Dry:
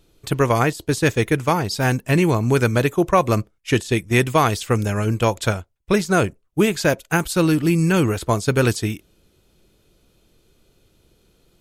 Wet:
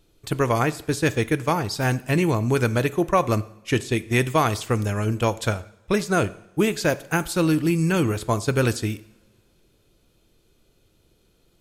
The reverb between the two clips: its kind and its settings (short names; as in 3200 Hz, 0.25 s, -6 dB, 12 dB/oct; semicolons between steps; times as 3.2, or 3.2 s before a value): two-slope reverb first 0.7 s, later 2.6 s, from -22 dB, DRR 15 dB; gain -3.5 dB